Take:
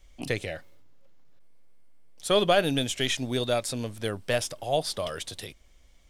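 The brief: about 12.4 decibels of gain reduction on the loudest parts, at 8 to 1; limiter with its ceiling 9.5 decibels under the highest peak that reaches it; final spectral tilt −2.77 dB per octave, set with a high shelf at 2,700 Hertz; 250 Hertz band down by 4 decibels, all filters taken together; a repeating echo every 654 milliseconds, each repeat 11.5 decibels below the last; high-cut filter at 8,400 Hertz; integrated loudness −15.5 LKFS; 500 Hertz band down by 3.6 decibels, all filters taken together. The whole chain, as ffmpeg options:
ffmpeg -i in.wav -af "lowpass=8400,equalizer=frequency=250:width_type=o:gain=-4,equalizer=frequency=500:width_type=o:gain=-4,highshelf=frequency=2700:gain=7.5,acompressor=threshold=-31dB:ratio=8,alimiter=level_in=1.5dB:limit=-24dB:level=0:latency=1,volume=-1.5dB,aecho=1:1:654|1308|1962:0.266|0.0718|0.0194,volume=22dB" out.wav

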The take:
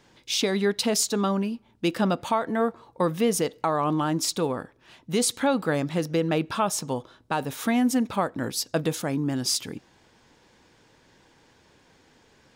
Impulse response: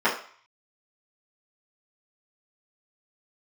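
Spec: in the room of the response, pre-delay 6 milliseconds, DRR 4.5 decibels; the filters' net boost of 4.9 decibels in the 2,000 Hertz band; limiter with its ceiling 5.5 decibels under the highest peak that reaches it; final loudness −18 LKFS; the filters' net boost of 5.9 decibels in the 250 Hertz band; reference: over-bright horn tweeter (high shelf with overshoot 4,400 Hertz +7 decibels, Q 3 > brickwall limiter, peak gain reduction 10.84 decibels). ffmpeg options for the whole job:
-filter_complex "[0:a]equalizer=frequency=250:width_type=o:gain=7,equalizer=frequency=2000:width_type=o:gain=8,alimiter=limit=-13dB:level=0:latency=1,asplit=2[link_01][link_02];[1:a]atrim=start_sample=2205,adelay=6[link_03];[link_02][link_03]afir=irnorm=-1:irlink=0,volume=-21.5dB[link_04];[link_01][link_04]amix=inputs=2:normalize=0,highshelf=frequency=4400:width_type=q:width=3:gain=7,volume=5dB,alimiter=limit=-8dB:level=0:latency=1"

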